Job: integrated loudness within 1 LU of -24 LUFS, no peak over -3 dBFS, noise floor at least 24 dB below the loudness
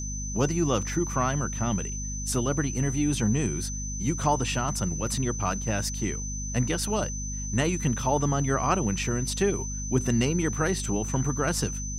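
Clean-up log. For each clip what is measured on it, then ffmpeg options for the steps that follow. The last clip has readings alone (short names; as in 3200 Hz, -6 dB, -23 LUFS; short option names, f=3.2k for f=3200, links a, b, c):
hum 50 Hz; harmonics up to 250 Hz; hum level -32 dBFS; steady tone 6100 Hz; tone level -35 dBFS; loudness -27.0 LUFS; peak -10.0 dBFS; loudness target -24.0 LUFS
-> -af "bandreject=f=50:t=h:w=6,bandreject=f=100:t=h:w=6,bandreject=f=150:t=h:w=6,bandreject=f=200:t=h:w=6,bandreject=f=250:t=h:w=6"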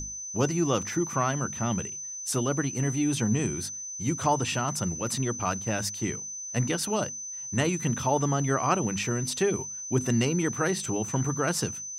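hum none; steady tone 6100 Hz; tone level -35 dBFS
-> -af "bandreject=f=6.1k:w=30"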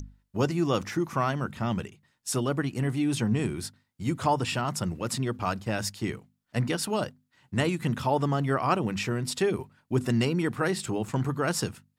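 steady tone none; loudness -29.0 LUFS; peak -11.0 dBFS; loudness target -24.0 LUFS
-> -af "volume=5dB"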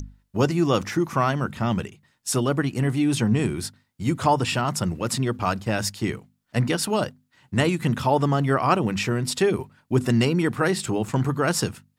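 loudness -24.0 LUFS; peak -6.0 dBFS; noise floor -70 dBFS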